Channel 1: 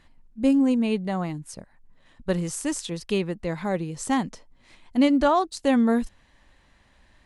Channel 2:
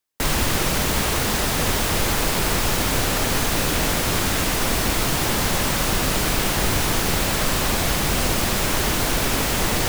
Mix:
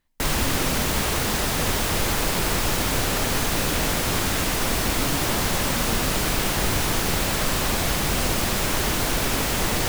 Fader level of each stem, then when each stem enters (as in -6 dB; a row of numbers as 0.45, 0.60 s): -17.0, -2.0 dB; 0.00, 0.00 s